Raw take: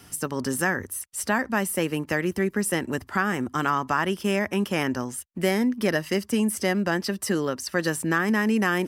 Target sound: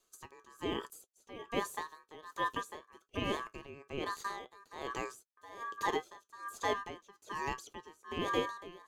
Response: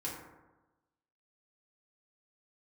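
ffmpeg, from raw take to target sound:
-filter_complex "[0:a]flanger=delay=7:depth=2.5:regen=66:speed=1.3:shape=triangular,agate=range=-20dB:threshold=-40dB:ratio=16:detection=peak,aeval=exprs='val(0)*sin(2*PI*1400*n/s)':c=same,equalizer=f=400:t=o:w=0.67:g=10,equalizer=f=1.6k:t=o:w=0.67:g=-10,equalizer=f=6.3k:t=o:w=0.67:g=8,acrossover=split=2600[a][b];[b]acompressor=threshold=-46dB:ratio=4:attack=1:release=60[c];[a][c]amix=inputs=2:normalize=0,aeval=exprs='val(0)*pow(10,-22*(0.5-0.5*cos(2*PI*1.2*n/s))/20)':c=same,volume=1dB"

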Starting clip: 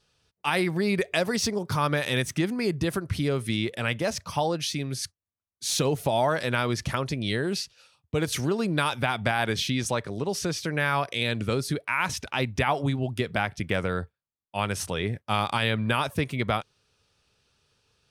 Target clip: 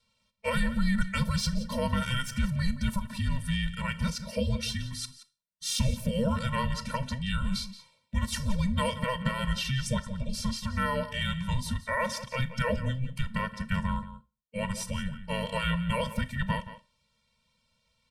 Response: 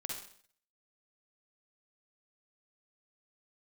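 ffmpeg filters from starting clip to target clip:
-filter_complex "[0:a]asplit=2[a][b];[b]adelay=174.9,volume=-13dB,highshelf=f=4k:g=-3.94[c];[a][c]amix=inputs=2:normalize=0,afreqshift=-390,asplit=2[d][e];[1:a]atrim=start_sample=2205,asetrate=79380,aresample=44100[f];[e][f]afir=irnorm=-1:irlink=0,volume=-5dB[g];[d][g]amix=inputs=2:normalize=0,afftfilt=real='re*eq(mod(floor(b*sr/1024/220),2),0)':imag='im*eq(mod(floor(b*sr/1024/220),2),0)':win_size=1024:overlap=0.75,volume=-2dB"

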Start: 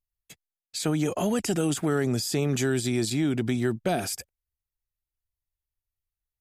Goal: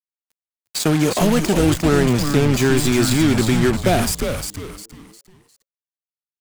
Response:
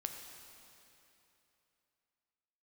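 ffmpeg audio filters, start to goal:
-filter_complex "[0:a]asettb=1/sr,asplit=3[a][b][c];[a]atrim=end=1.354[d];[b]atrim=start=1.35:end=2.78,asetpts=PTS-STARTPTS,afade=t=in:d=0.004:c=qsin,afade=t=out:st=1.426:d=0.004:c=qsin,highshelf=f=6.7k:g=-10[e];[c]atrim=start=2.776[f];[d][e]acrossfade=d=0.004:c1=hsin:c2=qsin[g];[g][f]acrossfade=d=0.004:c1=qsin:c2=hsin,acrusher=bits=4:mix=0:aa=0.5,asplit=5[h][i][j][k][l];[i]adelay=354,afreqshift=-140,volume=-5.5dB[m];[j]adelay=708,afreqshift=-280,volume=-14.9dB[n];[k]adelay=1062,afreqshift=-420,volume=-24.2dB[o];[l]adelay=1416,afreqshift=-560,volume=-33.6dB[p];[h][m][n][o][p]amix=inputs=5:normalize=0,volume=8.5dB"

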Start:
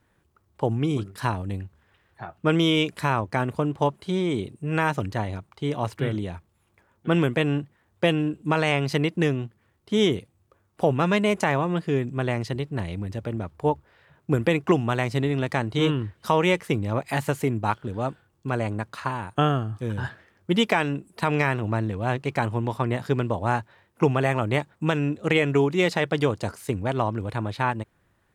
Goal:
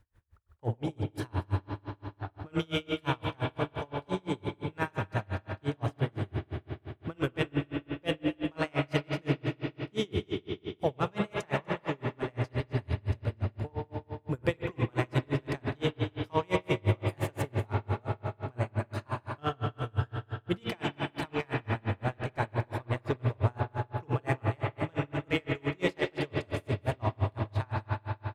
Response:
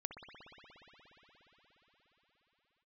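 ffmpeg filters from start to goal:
-filter_complex "[0:a]lowshelf=f=110:t=q:w=1.5:g=12.5,asplit=2[a][b];[b]asoftclip=type=tanh:threshold=-26dB,volume=-7dB[c];[a][c]amix=inputs=2:normalize=0,aecho=1:1:243:0.282[d];[1:a]atrim=start_sample=2205,asetrate=52920,aresample=44100[e];[d][e]afir=irnorm=-1:irlink=0,aeval=exprs='val(0)*pow(10,-35*(0.5-0.5*cos(2*PI*5.8*n/s))/20)':c=same"

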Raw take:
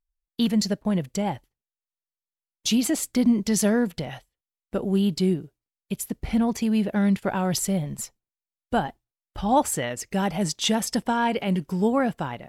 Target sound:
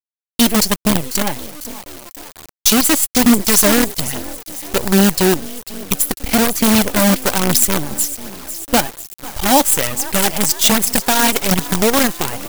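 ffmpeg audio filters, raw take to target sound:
-filter_complex "[0:a]asplit=2[a][b];[b]acompressor=threshold=-34dB:ratio=12,volume=0dB[c];[a][c]amix=inputs=2:normalize=0,adynamicequalizer=threshold=0.0126:dfrequency=5900:dqfactor=1:tfrequency=5900:tqfactor=1:attack=5:release=100:ratio=0.375:range=2.5:mode=cutabove:tftype=bell,asplit=2[d][e];[e]asplit=5[f][g][h][i][j];[f]adelay=497,afreqshift=44,volume=-14.5dB[k];[g]adelay=994,afreqshift=88,volume=-20.5dB[l];[h]adelay=1491,afreqshift=132,volume=-26.5dB[m];[i]adelay=1988,afreqshift=176,volume=-32.6dB[n];[j]adelay=2485,afreqshift=220,volume=-38.6dB[o];[k][l][m][n][o]amix=inputs=5:normalize=0[p];[d][p]amix=inputs=2:normalize=0,acrusher=bits=4:dc=4:mix=0:aa=0.000001,aphaser=in_gain=1:out_gain=1:delay=3.9:decay=0.35:speed=1.2:type=triangular,crystalizer=i=2.5:c=0,acontrast=81,volume=-1dB"

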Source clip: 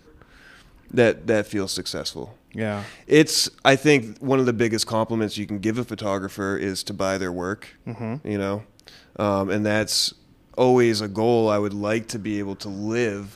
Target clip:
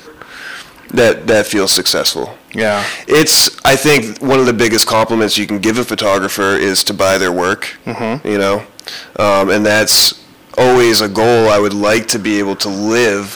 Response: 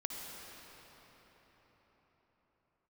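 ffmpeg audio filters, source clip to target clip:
-filter_complex "[0:a]asplit=2[a][b];[b]highpass=f=720:p=1,volume=28dB,asoftclip=type=tanh:threshold=-1dB[c];[a][c]amix=inputs=2:normalize=0,lowpass=f=1.5k:p=1,volume=-6dB,crystalizer=i=4:c=0"

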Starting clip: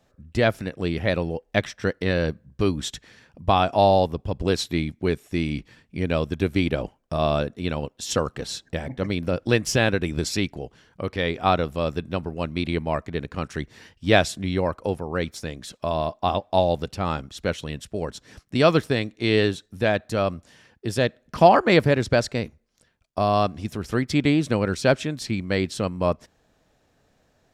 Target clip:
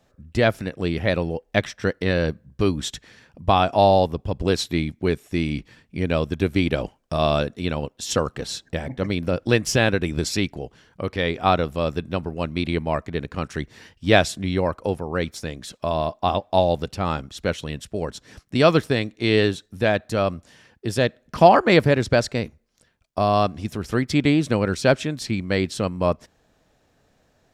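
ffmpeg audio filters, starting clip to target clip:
-filter_complex "[0:a]asettb=1/sr,asplit=3[a][b][c];[a]atrim=end=6.714[d];[b]atrim=start=6.71:end=7.65,asetpts=PTS-STARTPTS,afade=t=in:d=0.004:c=qsin,afade=t=out:st=0.936:d=0.004:c=qsin,equalizer=f=5.6k:w=0.37:g=4[e];[c]atrim=start=7.646[f];[d][e]acrossfade=d=0.004:c1=hsin:c2=qsin[g];[g][f]acrossfade=d=0.004:c1=qsin:c2=hsin,volume=1.5dB"

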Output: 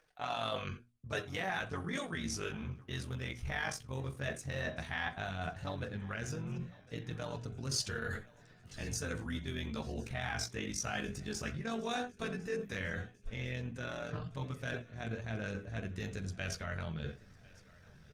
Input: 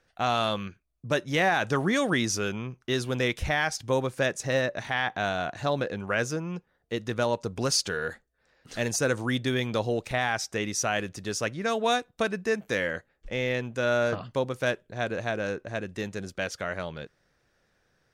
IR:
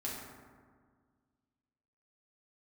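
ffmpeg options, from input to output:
-filter_complex "[0:a]asplit=2[a][b];[1:a]atrim=start_sample=2205,afade=t=out:st=0.23:d=0.01,atrim=end_sample=10584,asetrate=74970,aresample=44100[c];[b][c]afir=irnorm=-1:irlink=0,volume=-3.5dB[d];[a][d]amix=inputs=2:normalize=0,tremolo=f=46:d=0.857,acontrast=43,flanger=delay=6.4:depth=9.5:regen=2:speed=0.14:shape=triangular,asubboost=boost=6:cutoff=190,areverse,acompressor=threshold=-37dB:ratio=5,areverse,lowshelf=f=450:g=-5.5,bandreject=f=60:t=h:w=6,bandreject=f=120:t=h:w=6,bandreject=f=180:t=h:w=6,bandreject=f=240:t=h:w=6,bandreject=f=300:t=h:w=6,aecho=1:1:1053|2106|3159|4212:0.0708|0.0425|0.0255|0.0153,volume=3.5dB" -ar 48000 -c:a libopus -b:a 32k

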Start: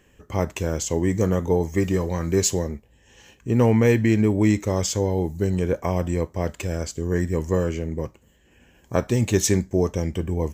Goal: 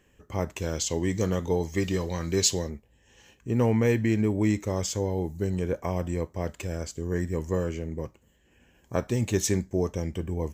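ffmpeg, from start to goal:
-filter_complex "[0:a]asettb=1/sr,asplit=3[a][b][c];[a]atrim=end=0.624[d];[b]atrim=start=0.62:end=2.7,asetpts=PTS-STARTPTS,afade=t=in:d=0.004:c=qsin,afade=t=out:st=2.076:d=0.004:c=qsin,equalizer=f=3.9k:t=o:w=1.3:g=10.5[e];[c]atrim=start=2.696[f];[d][e]acrossfade=d=0.004:c1=hsin:c2=qsin[g];[g][f]acrossfade=d=0.004:c1=qsin:c2=hsin,volume=-5.5dB"

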